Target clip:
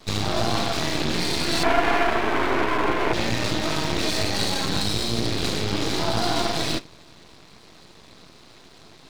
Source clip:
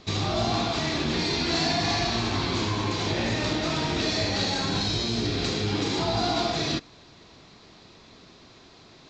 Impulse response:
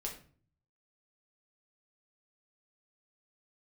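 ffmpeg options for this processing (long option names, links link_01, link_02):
-filter_complex "[0:a]asettb=1/sr,asplit=3[link_01][link_02][link_03];[link_01]atrim=end=1.634[link_04];[link_02]atrim=start=1.63:end=3.13,asetpts=PTS-STARTPTS,afade=type=in:duration=0.004:curve=qsin,afade=type=out:start_time=1.496:duration=0.004:curve=qsin,highpass=frequency=270:width=0.5412,highpass=frequency=270:width=1.3066,equalizer=frequency=270:width_type=q:width=4:gain=4,equalizer=frequency=410:width_type=q:width=4:gain=9,equalizer=frequency=630:width_type=q:width=4:gain=8,equalizer=frequency=970:width_type=q:width=4:gain=7,equalizer=frequency=1500:width_type=q:width=4:gain=9,equalizer=frequency=2200:width_type=q:width=4:gain=6,lowpass=frequency=2500:width=0.5412,lowpass=frequency=2500:width=1.3066[link_05];[link_03]atrim=start=3.126[link_06];[link_04][link_05]acrossfade=duration=0.004:curve1=hsin:curve2=qsin[link_07];[link_07][link_06]acrossfade=duration=0.004:curve1=qsin:curve2=hsin,asplit=2[link_08][link_09];[1:a]atrim=start_sample=2205[link_10];[link_09][link_10]afir=irnorm=-1:irlink=0,volume=-13.5dB[link_11];[link_08][link_11]amix=inputs=2:normalize=0,aeval=exprs='max(val(0),0)':channel_layout=same,volume=5dB"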